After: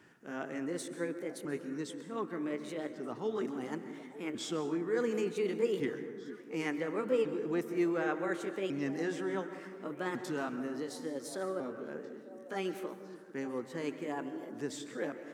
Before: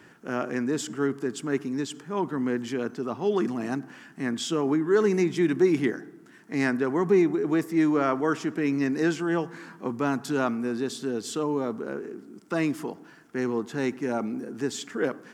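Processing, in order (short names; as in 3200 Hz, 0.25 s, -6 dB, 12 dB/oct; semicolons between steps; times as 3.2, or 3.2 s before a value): repeated pitch sweeps +4.5 st, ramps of 1.45 s; delay with a stepping band-pass 0.449 s, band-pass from 240 Hz, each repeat 1.4 oct, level -9.5 dB; plate-style reverb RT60 1.4 s, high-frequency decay 0.45×, pre-delay 0.115 s, DRR 10.5 dB; gain -9 dB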